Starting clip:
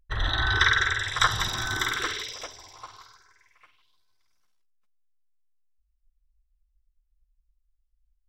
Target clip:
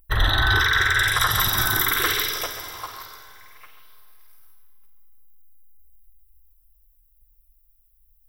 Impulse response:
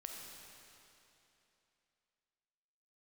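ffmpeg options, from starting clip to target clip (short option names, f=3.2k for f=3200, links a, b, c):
-filter_complex "[0:a]aexciter=amount=15:drive=4.9:freq=10k,asplit=2[a][b];[1:a]atrim=start_sample=2205,adelay=136[c];[b][c]afir=irnorm=-1:irlink=0,volume=-7dB[d];[a][d]amix=inputs=2:normalize=0,alimiter=limit=-17dB:level=0:latency=1:release=68,volume=8dB"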